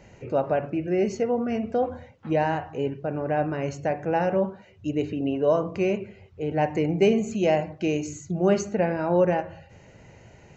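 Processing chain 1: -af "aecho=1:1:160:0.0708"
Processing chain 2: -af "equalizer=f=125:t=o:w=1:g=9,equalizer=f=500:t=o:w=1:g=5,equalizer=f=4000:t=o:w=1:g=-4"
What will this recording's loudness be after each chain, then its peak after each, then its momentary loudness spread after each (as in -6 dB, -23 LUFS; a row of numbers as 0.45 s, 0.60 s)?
-25.5 LUFS, -21.5 LUFS; -9.0 dBFS, -6.0 dBFS; 8 LU, 8 LU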